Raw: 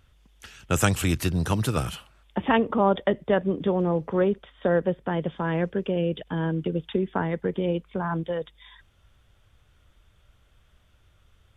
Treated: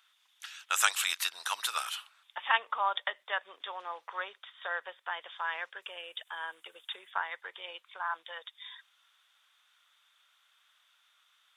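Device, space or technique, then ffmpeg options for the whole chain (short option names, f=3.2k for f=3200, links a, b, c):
headphones lying on a table: -filter_complex "[0:a]highpass=f=1k:w=0.5412,highpass=f=1k:w=1.3066,equalizer=f=3.7k:t=o:w=0.25:g=7,asettb=1/sr,asplit=3[a][b][c];[a]atrim=end=5.824[d];[b]atrim=start=5.82:end=7.11,asetpts=PTS-STARTPTS,afade=t=in:d=0.004:c=qsin,afade=t=out:st=1.286:d=0.004:c=qsin,highshelf=f=6.6k:t=q:w=1.5:g=9.5[e];[c]atrim=start=7.106[f];[d][e]acrossfade=d=0.004:c1=hsin:c2=qsin[g];[g][f]acrossfade=d=0.004:c1=qsin:c2=hsin"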